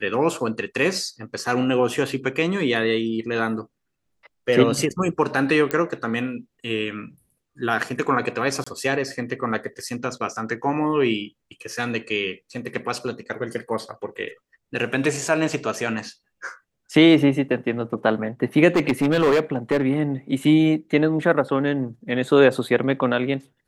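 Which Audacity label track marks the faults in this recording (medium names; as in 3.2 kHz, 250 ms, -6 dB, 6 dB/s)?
5.710000	5.710000	pop -9 dBFS
8.640000	8.660000	dropout 25 ms
18.760000	19.820000	clipped -14 dBFS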